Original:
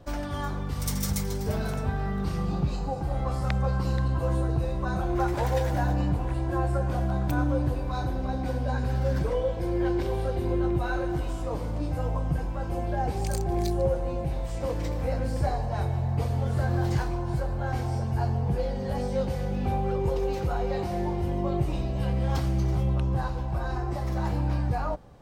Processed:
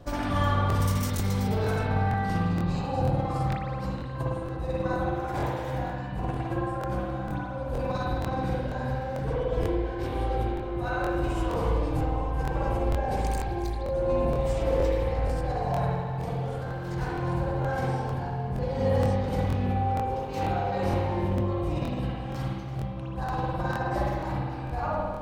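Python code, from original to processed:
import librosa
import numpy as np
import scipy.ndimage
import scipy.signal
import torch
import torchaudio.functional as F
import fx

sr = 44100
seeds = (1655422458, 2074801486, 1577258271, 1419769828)

y = fx.over_compress(x, sr, threshold_db=-31.0, ratio=-1.0)
y = fx.rev_spring(y, sr, rt60_s=1.5, pass_ms=(52,), chirp_ms=30, drr_db=-6.0)
y = fx.buffer_crackle(y, sr, first_s=0.68, period_s=0.47, block=1024, kind='repeat')
y = y * 10.0 ** (-1.5 / 20.0)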